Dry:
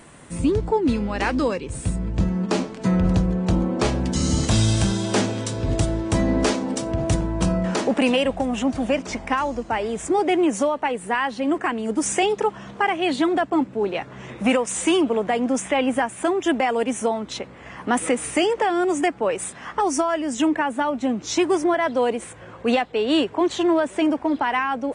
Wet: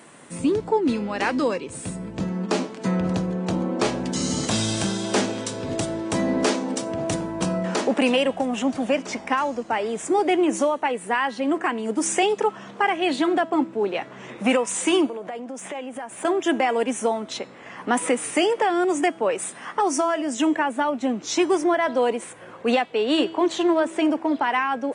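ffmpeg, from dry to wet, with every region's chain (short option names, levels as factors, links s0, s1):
-filter_complex "[0:a]asettb=1/sr,asplit=3[s0][s1][s2];[s0]atrim=end=15.064[s3];[s1]atrim=start=15.06:end=16.25,asetpts=PTS-STARTPTS,afade=t=in:d=0.004:c=qsin,afade=t=out:st=1.186:d=0.004:c=qsin,acompressor=threshold=0.0316:ratio=8:attack=3.2:release=140:knee=1:detection=peak,equalizer=f=610:w=1.1:g=4,aeval=exprs='(tanh(6.31*val(0)+0.3)-tanh(0.3))/6.31':c=same[s4];[s2]atrim=start=16.246[s5];[s3][s4]acrossfade=d=0.004:c1=hsin:c2=qsin[s6];[s6][s5]acrossfade=d=0.004:c1=qsin:c2=hsin,highpass=200,bandreject=f=326.6:t=h:w=4,bandreject=f=653.2:t=h:w=4,bandreject=f=979.8:t=h:w=4,bandreject=f=1306.4:t=h:w=4,bandreject=f=1633:t=h:w=4,bandreject=f=1959.6:t=h:w=4,bandreject=f=2286.2:t=h:w=4,bandreject=f=2612.8:t=h:w=4,bandreject=f=2939.4:t=h:w=4,bandreject=f=3266:t=h:w=4,bandreject=f=3592.6:t=h:w=4,bandreject=f=3919.2:t=h:w=4,bandreject=f=4245.8:t=h:w=4,bandreject=f=4572.4:t=h:w=4,bandreject=f=4899:t=h:w=4,bandreject=f=5225.6:t=h:w=4,bandreject=f=5552.2:t=h:w=4,bandreject=f=5878.8:t=h:w=4,bandreject=f=6205.4:t=h:w=4,bandreject=f=6532:t=h:w=4,bandreject=f=6858.6:t=h:w=4,bandreject=f=7185.2:t=h:w=4,bandreject=f=7511.8:t=h:w=4,bandreject=f=7838.4:t=h:w=4,bandreject=f=8165:t=h:w=4,bandreject=f=8491.6:t=h:w=4,bandreject=f=8818.2:t=h:w=4,bandreject=f=9144.8:t=h:w=4,bandreject=f=9471.4:t=h:w=4,bandreject=f=9798:t=h:w=4"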